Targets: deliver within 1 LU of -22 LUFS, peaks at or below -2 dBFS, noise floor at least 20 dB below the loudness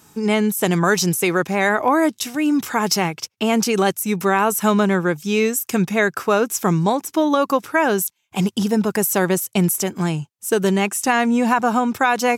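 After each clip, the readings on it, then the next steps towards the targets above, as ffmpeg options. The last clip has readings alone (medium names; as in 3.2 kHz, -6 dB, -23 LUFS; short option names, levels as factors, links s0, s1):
loudness -19.0 LUFS; peak level -4.5 dBFS; loudness target -22.0 LUFS
-> -af "volume=0.708"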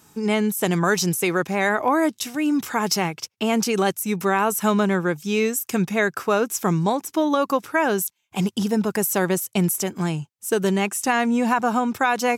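loudness -22.0 LUFS; peak level -7.5 dBFS; noise floor -67 dBFS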